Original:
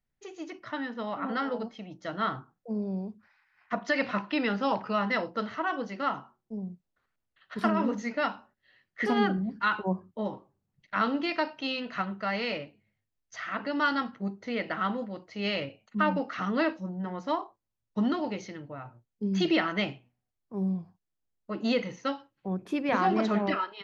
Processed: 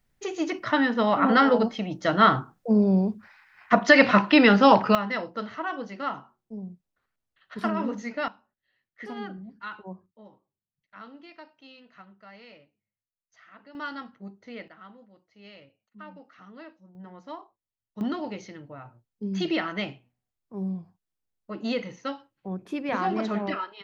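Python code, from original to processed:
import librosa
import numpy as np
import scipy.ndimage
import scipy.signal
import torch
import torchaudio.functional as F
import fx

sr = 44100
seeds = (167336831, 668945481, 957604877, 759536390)

y = fx.gain(x, sr, db=fx.steps((0.0, 12.0), (4.95, -1.0), (8.28, -11.0), (10.06, -18.0), (13.75, -8.5), (14.68, -18.5), (16.95, -10.0), (18.01, -1.5)))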